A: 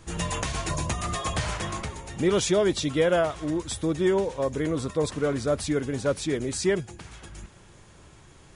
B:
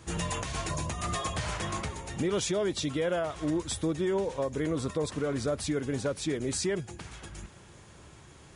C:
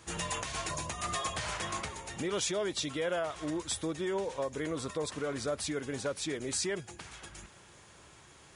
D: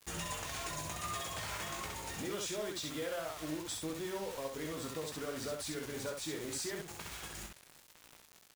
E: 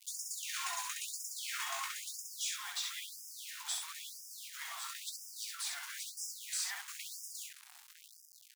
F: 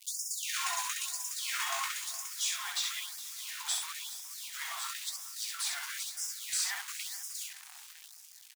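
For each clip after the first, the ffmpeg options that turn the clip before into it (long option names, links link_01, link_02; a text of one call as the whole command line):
ffmpeg -i in.wav -af "highpass=46,alimiter=limit=-21.5dB:level=0:latency=1:release=223" out.wav
ffmpeg -i in.wav -af "lowshelf=frequency=400:gain=-9.5" out.wav
ffmpeg -i in.wav -filter_complex "[0:a]acompressor=threshold=-43dB:ratio=2.5,acrusher=bits=7:mix=0:aa=0.000001,asplit=2[link_01][link_02];[link_02]aecho=0:1:19|66:0.447|0.668[link_03];[link_01][link_03]amix=inputs=2:normalize=0" out.wav
ffmpeg -i in.wav -af "afftfilt=real='re*gte(b*sr/1024,660*pow(5000/660,0.5+0.5*sin(2*PI*1*pts/sr)))':imag='im*gte(b*sr/1024,660*pow(5000/660,0.5+0.5*sin(2*PI*1*pts/sr)))':win_size=1024:overlap=0.75,volume=3.5dB" out.wav
ffmpeg -i in.wav -af "aecho=1:1:415|830|1245|1660|2075:0.158|0.0808|0.0412|0.021|0.0107,volume=5dB" out.wav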